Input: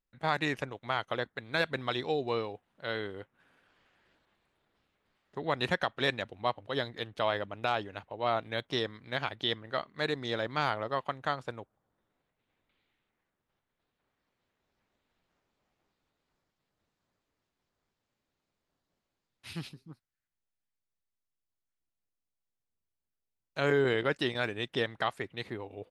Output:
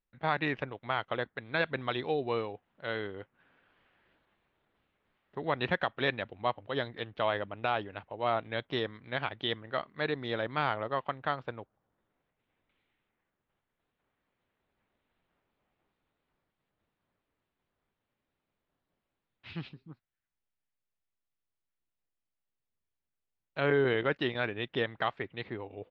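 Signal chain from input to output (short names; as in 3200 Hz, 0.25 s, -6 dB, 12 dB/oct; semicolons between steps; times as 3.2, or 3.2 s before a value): LPF 3500 Hz 24 dB/oct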